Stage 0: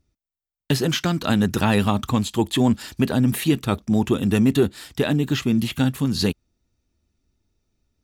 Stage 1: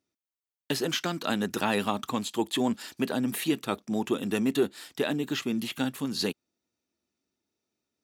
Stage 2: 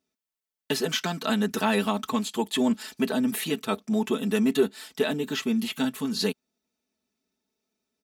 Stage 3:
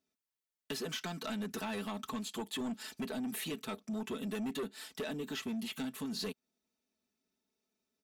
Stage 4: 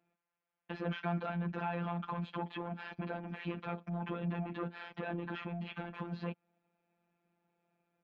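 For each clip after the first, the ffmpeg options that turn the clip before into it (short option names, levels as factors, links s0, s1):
-af "highpass=270,volume=0.562"
-af "aecho=1:1:4.6:0.8"
-filter_complex "[0:a]acrossover=split=890|6700[s0][s1][s2];[s0]volume=11.2,asoftclip=hard,volume=0.0891[s3];[s3][s1][s2]amix=inputs=3:normalize=0,acompressor=threshold=0.0282:ratio=2.5,asoftclip=type=tanh:threshold=0.0422,volume=0.596"
-af "alimiter=level_in=7.08:limit=0.0631:level=0:latency=1:release=16,volume=0.141,highpass=110,equalizer=f=230:t=q:w=4:g=-4,equalizer=f=360:t=q:w=4:g=-5,equalizer=f=1800:t=q:w=4:g=-6,lowpass=f=2200:w=0.5412,lowpass=f=2200:w=1.3066,afftfilt=real='hypot(re,im)*cos(PI*b)':imag='0':win_size=1024:overlap=0.75,volume=6.31"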